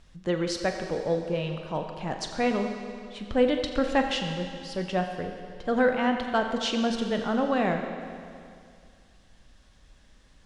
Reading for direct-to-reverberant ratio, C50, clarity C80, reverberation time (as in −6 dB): 4.5 dB, 5.5 dB, 6.5 dB, 2.3 s